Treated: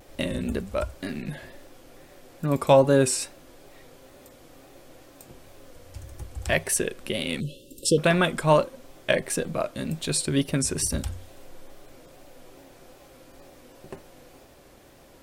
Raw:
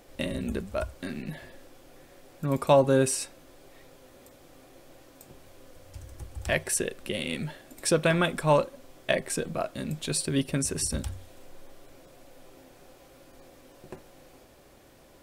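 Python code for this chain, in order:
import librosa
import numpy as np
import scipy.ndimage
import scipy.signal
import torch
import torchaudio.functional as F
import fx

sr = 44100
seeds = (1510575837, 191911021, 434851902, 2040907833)

y = fx.wow_flutter(x, sr, seeds[0], rate_hz=2.1, depth_cents=72.0)
y = fx.spec_erase(y, sr, start_s=7.4, length_s=0.58, low_hz=600.0, high_hz=2600.0)
y = y * 10.0 ** (3.0 / 20.0)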